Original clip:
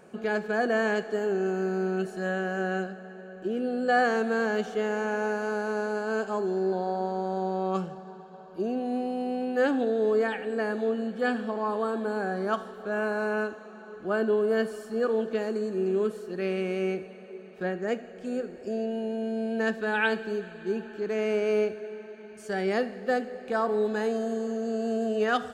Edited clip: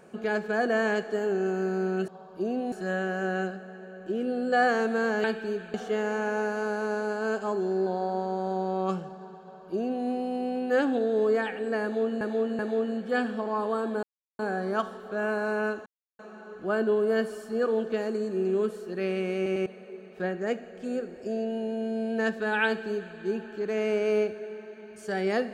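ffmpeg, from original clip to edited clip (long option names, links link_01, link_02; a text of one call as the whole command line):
ffmpeg -i in.wav -filter_complex "[0:a]asplit=12[link_01][link_02][link_03][link_04][link_05][link_06][link_07][link_08][link_09][link_10][link_11][link_12];[link_01]atrim=end=2.082[link_13];[link_02]atrim=start=8.268:end=8.912[link_14];[link_03]atrim=start=2.078:end=4.602[link_15];[link_04]atrim=start=20.068:end=20.572[link_16];[link_05]atrim=start=4.598:end=11.072[link_17];[link_06]atrim=start=10.688:end=11.072[link_18];[link_07]atrim=start=10.688:end=12.13,asetpts=PTS-STARTPTS,afade=type=out:start_time=1.438:duration=0.004:curve=hsin,apad=pad_dur=0.36[link_19];[link_08]atrim=start=12.13:end=13.6,asetpts=PTS-STARTPTS,afade=type=in:duration=0.004:curve=hsin,afade=type=out:start_time=1.466:duration=0.004:curve=hsin,apad=pad_dur=0.33[link_20];[link_09]atrim=start=13.6:end=16.872,asetpts=PTS-STARTPTS,afade=type=in:duration=0.004:curve=hsin[link_21];[link_10]atrim=start=16.768:end=16.872[link_22];[link_11]atrim=start=16.768:end=16.872[link_23];[link_12]atrim=start=17.068[link_24];[link_13][link_14]acrossfade=duration=0.004:curve1=hsin:curve2=hsin[link_25];[link_25][link_15]acrossfade=duration=0.004:curve1=hsin:curve2=hsin[link_26];[link_26][link_16]acrossfade=duration=0.004:curve1=hsin:curve2=hsin[link_27];[link_27][link_17]acrossfade=duration=0.004:curve1=hsin:curve2=hsin[link_28];[link_28][link_18]acrossfade=duration=0.004:curve1=hsin:curve2=hsin[link_29];[link_19][link_20][link_21]concat=n=3:v=0:a=1[link_30];[link_29][link_30]acrossfade=duration=0.004:curve1=hsin:curve2=hsin[link_31];[link_31][link_22]acrossfade=duration=0.004:curve1=hsin:curve2=hsin[link_32];[link_32][link_23]acrossfade=duration=0.004:curve1=hsin:curve2=hsin[link_33];[link_33][link_24]acrossfade=duration=0.004:curve1=hsin:curve2=hsin" out.wav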